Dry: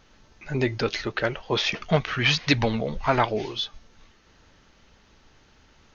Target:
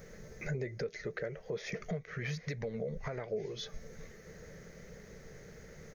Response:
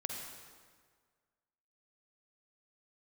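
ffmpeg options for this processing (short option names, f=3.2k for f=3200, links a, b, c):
-af "firequalizer=gain_entry='entry(100,0);entry(160,12);entry(280,-6);entry(450,13);entry(890,-10);entry(2000,5);entry(2800,-13);entry(9100,15)':delay=0.05:min_phase=1,acompressor=threshold=-38dB:ratio=3,alimiter=level_in=6.5dB:limit=-24dB:level=0:latency=1:release=330,volume=-6.5dB,volume=3dB"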